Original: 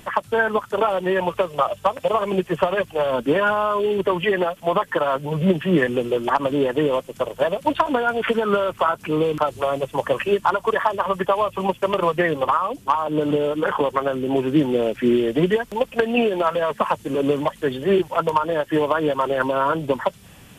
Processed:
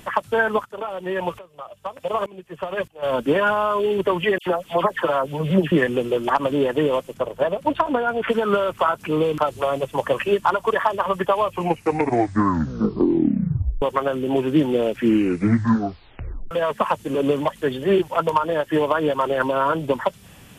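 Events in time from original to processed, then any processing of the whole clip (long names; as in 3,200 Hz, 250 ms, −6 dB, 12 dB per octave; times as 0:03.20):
0:00.64–0:03.02: tremolo with a ramp in dB swelling 0.65 Hz → 2 Hz, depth 22 dB
0:04.38–0:05.72: all-pass dispersion lows, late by 86 ms, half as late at 2,000 Hz
0:07.14–0:08.30: high-shelf EQ 2,200 Hz −7.5 dB
0:11.44: tape stop 2.38 s
0:14.99: tape stop 1.52 s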